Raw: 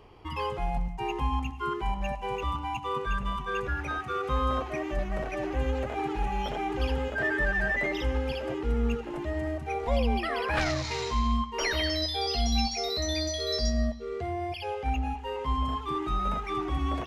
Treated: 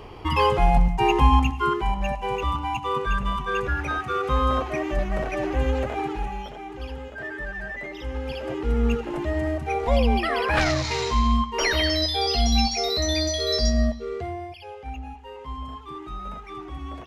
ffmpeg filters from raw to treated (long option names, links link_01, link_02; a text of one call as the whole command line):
ffmpeg -i in.wav -af "volume=24dB,afade=type=out:start_time=1.34:duration=0.52:silence=0.473151,afade=type=out:start_time=5.81:duration=0.7:silence=0.266073,afade=type=in:start_time=7.96:duration=0.97:silence=0.251189,afade=type=out:start_time=13.96:duration=0.58:silence=0.251189" out.wav